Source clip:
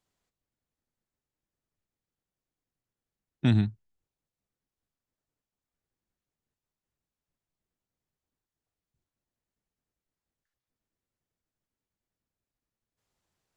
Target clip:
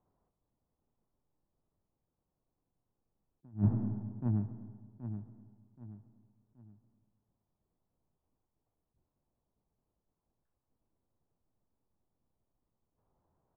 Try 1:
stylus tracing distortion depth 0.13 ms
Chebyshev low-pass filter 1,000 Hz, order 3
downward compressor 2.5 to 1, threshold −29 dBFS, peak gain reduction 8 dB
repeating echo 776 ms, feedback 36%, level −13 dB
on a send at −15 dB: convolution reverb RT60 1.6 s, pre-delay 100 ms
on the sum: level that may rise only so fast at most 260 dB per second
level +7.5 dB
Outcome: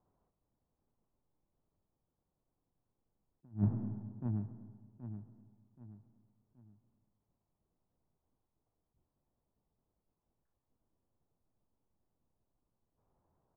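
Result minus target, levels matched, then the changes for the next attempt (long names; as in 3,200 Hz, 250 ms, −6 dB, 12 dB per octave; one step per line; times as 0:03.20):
downward compressor: peak gain reduction +5 dB
change: downward compressor 2.5 to 1, threshold −21 dBFS, peak gain reduction 3 dB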